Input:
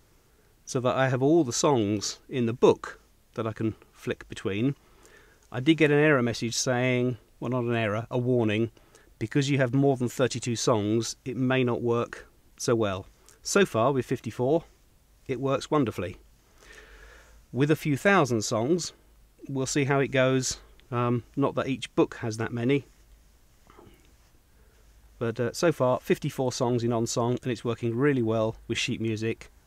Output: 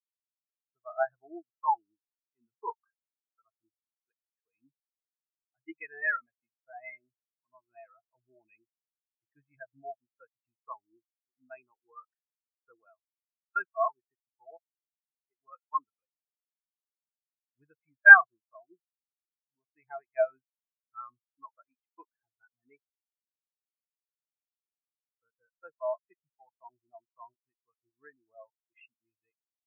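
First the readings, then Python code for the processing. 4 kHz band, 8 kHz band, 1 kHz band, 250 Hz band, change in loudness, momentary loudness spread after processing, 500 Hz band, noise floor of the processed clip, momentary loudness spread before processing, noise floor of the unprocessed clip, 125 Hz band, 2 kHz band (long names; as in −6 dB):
below −40 dB, below −40 dB, −4.0 dB, below −30 dB, +3.0 dB, 26 LU, −14.5 dB, below −85 dBFS, 11 LU, −61 dBFS, below −40 dB, +7.0 dB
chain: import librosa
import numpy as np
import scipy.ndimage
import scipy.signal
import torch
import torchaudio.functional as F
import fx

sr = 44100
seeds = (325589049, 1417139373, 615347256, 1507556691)

y = fx.band_shelf(x, sr, hz=1400.0, db=15.5, octaves=2.4)
y = fx.spectral_expand(y, sr, expansion=4.0)
y = y * 10.0 ** (-7.0 / 20.0)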